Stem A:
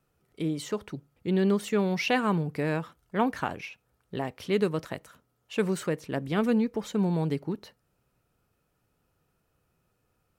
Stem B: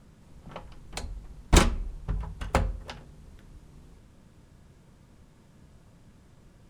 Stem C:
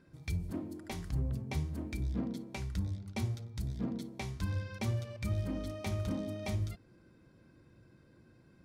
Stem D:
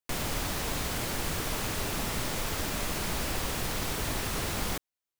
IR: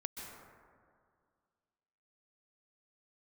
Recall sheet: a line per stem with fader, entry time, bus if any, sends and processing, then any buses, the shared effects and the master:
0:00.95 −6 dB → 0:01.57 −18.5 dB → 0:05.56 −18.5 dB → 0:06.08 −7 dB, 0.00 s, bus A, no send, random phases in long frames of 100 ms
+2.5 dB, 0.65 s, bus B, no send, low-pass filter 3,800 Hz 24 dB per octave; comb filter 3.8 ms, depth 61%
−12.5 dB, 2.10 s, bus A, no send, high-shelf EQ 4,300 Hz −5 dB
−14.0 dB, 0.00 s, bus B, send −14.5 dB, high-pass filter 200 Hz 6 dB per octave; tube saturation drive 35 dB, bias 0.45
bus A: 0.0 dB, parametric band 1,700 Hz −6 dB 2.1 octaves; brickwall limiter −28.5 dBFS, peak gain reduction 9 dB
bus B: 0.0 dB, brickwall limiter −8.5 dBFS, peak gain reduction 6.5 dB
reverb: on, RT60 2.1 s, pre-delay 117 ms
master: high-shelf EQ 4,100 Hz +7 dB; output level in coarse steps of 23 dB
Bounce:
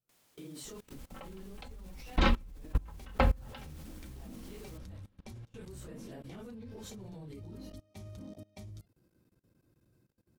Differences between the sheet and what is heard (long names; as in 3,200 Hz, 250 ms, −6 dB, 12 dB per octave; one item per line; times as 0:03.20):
stem C −12.5 dB → −6.5 dB
stem D −14.0 dB → −21.0 dB